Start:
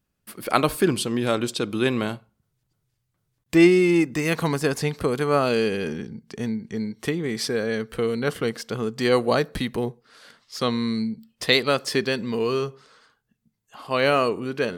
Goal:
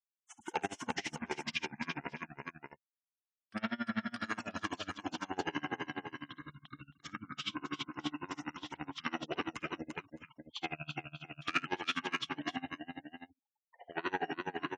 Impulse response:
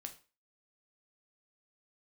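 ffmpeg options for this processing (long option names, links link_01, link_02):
-filter_complex "[0:a]asetrate=28595,aresample=44100,atempo=1.54221,asoftclip=type=tanh:threshold=-15dB,highpass=frequency=1100:poles=1,acrusher=bits=5:mode=log:mix=0:aa=0.000001,afftfilt=real='re*gte(hypot(re,im),0.00891)':imag='im*gte(hypot(re,im),0.00891)':win_size=1024:overlap=0.75,asplit=2[link_01][link_02];[link_02]aecho=0:1:54|347|618:0.631|0.668|0.447[link_03];[link_01][link_03]amix=inputs=2:normalize=0,acrossover=split=4700[link_04][link_05];[link_05]acompressor=threshold=-46dB:ratio=4:attack=1:release=60[link_06];[link_04][link_06]amix=inputs=2:normalize=0,aeval=exprs='val(0)*pow(10,-27*(0.5-0.5*cos(2*PI*12*n/s))/20)':channel_layout=same,volume=-2.5dB"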